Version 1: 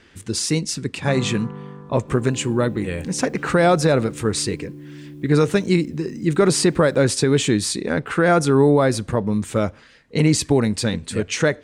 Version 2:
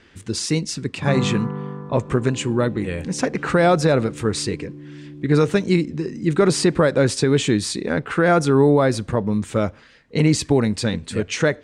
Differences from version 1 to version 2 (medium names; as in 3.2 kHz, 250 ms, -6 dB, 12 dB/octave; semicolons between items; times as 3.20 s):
speech: remove distance through air 55 m; first sound +6.0 dB; master: add distance through air 90 m